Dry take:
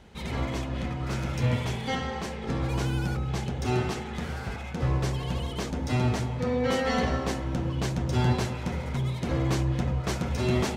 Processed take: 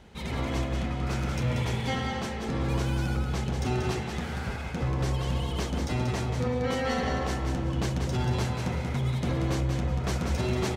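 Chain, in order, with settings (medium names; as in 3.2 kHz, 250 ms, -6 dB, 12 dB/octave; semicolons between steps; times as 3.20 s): peak limiter -20.5 dBFS, peak gain reduction 6.5 dB; feedback delay 185 ms, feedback 25%, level -5.5 dB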